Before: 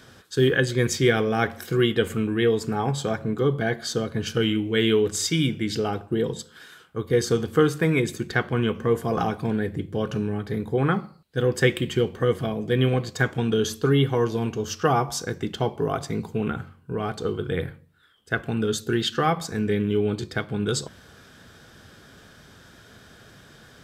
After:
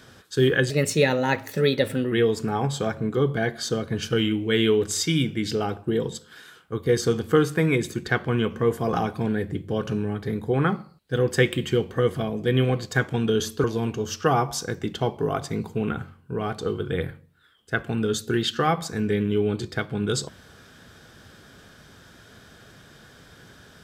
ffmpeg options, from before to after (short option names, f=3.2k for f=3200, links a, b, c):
-filter_complex "[0:a]asplit=4[a][b][c][d];[a]atrim=end=0.704[e];[b]atrim=start=0.7:end=2.36,asetpts=PTS-STARTPTS,asetrate=51597,aresample=44100,atrim=end_sample=62569,asetpts=PTS-STARTPTS[f];[c]atrim=start=2.356:end=13.882[g];[d]atrim=start=14.228[h];[e][f]acrossfade=d=0.004:c1=hsin:c2=hsin[i];[i][g]acrossfade=d=0.004:c1=hsin:c2=hsin[j];[j][h]acrossfade=d=0.004:c1=hsin:c2=hsin"